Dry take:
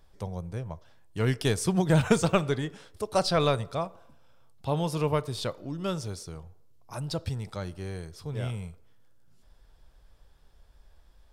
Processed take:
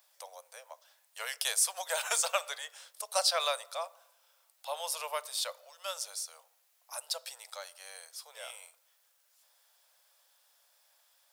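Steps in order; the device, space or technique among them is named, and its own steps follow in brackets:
turntable without a phono preamp (RIAA equalisation recording; white noise bed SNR 36 dB)
Butterworth high-pass 520 Hz 72 dB per octave
level −4.5 dB

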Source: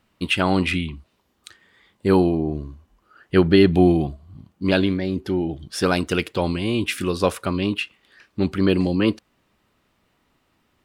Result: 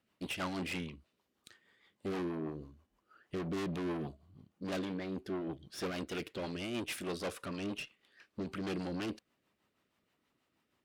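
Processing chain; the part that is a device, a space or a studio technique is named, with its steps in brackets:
overdriven rotary cabinet (tube saturation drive 27 dB, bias 0.75; rotating-speaker cabinet horn 6.3 Hz)
high-pass filter 180 Hz 6 dB per octave
0:04.84–0:06.53: dynamic equaliser 9,000 Hz, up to −5 dB, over −57 dBFS, Q 0.97
level −4.5 dB

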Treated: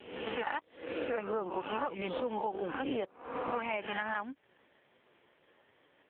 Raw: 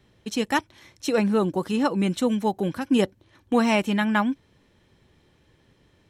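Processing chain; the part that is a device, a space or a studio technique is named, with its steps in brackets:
peak hold with a rise ahead of every peak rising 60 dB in 0.78 s
voicemail (band-pass filter 450–3,100 Hz; downward compressor 8 to 1, threshold −33 dBFS, peak gain reduction 16.5 dB; level +2.5 dB; AMR narrowband 4.75 kbit/s 8,000 Hz)

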